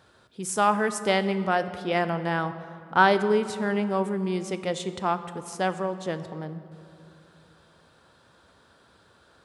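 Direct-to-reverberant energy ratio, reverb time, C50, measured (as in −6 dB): 11.0 dB, 2.7 s, 12.5 dB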